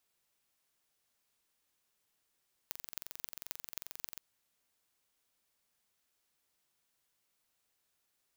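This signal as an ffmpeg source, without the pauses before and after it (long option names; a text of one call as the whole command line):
ffmpeg -f lavfi -i "aevalsrc='0.299*eq(mod(n,1960),0)*(0.5+0.5*eq(mod(n,11760),0))':duration=1.48:sample_rate=44100" out.wav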